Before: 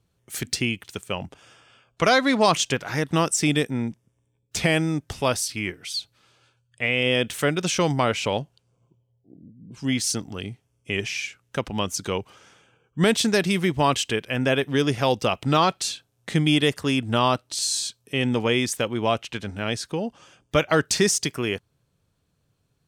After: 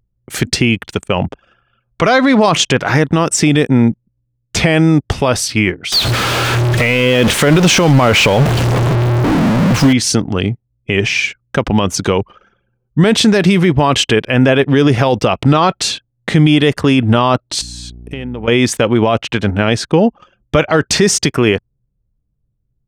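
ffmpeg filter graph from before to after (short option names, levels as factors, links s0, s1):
-filter_complex "[0:a]asettb=1/sr,asplit=3[s0][s1][s2];[s0]atrim=end=5.924[s3];[s1]atrim=start=5.92:end=9.93,asetpts=PTS-STARTPTS,afade=t=in:d=0.004:c=qsin,afade=t=out:st=4.006:d=0.004:c=qsin,aeval=exprs='val(0)+0.5*0.0631*sgn(val(0))':c=same,acrusher=bits=4:mode=log:mix=0:aa=0.000001[s4];[s2]atrim=start=9.926[s5];[s3][s4]acrossfade=d=0.004:c1=hsin:c2=qsin[s6];[s6][s5]acrossfade=d=0.004:c1=qsin:c2=hsin,asettb=1/sr,asplit=3[s7][s8][s9];[s7]atrim=end=17.614[s10];[s8]atrim=start=17.61:end=18.48,asetpts=PTS-STARTPTS,afade=t=in:d=0.004:c=qsin,afade=t=out:st=0.866:d=0.004:c=qsin,acompressor=threshold=0.0126:ratio=10:attack=3.2:release=140:knee=1:detection=peak,aeval=exprs='val(0)+0.00355*(sin(2*PI*60*n/s)+sin(2*PI*2*60*n/s)/2+sin(2*PI*3*60*n/s)/3+sin(2*PI*4*60*n/s)/4+sin(2*PI*5*60*n/s)/5)':c=same[s11];[s9]atrim=start=18.476[s12];[s10][s11]acrossfade=d=0.004:c1=hsin:c2=qsin[s13];[s13][s12]acrossfade=d=0.004:c1=qsin:c2=hsin,anlmdn=0.0251,lowpass=f=2300:p=1,alimiter=level_in=8.91:limit=0.891:release=50:level=0:latency=1,volume=0.891"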